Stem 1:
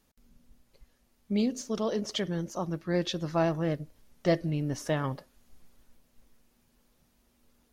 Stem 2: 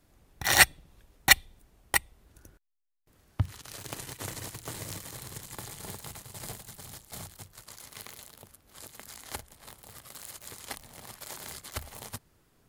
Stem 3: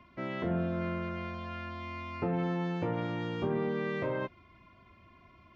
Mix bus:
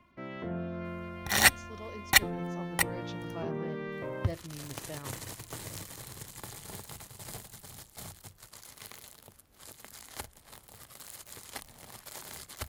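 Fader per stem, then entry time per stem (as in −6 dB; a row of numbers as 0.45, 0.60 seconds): −14.5, −2.5, −5.0 decibels; 0.00, 0.85, 0.00 seconds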